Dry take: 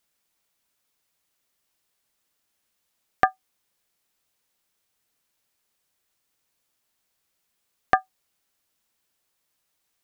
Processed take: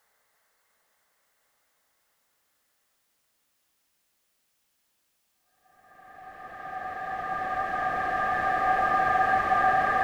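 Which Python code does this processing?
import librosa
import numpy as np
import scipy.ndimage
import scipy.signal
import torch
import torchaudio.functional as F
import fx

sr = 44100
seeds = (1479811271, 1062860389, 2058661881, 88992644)

y = fx.spec_box(x, sr, start_s=1.69, length_s=0.55, low_hz=420.0, high_hz=2200.0, gain_db=11)
y = fx.paulstretch(y, sr, seeds[0], factor=8.3, window_s=1.0, from_s=2.07)
y = F.gain(torch.from_numpy(y), 2.5).numpy()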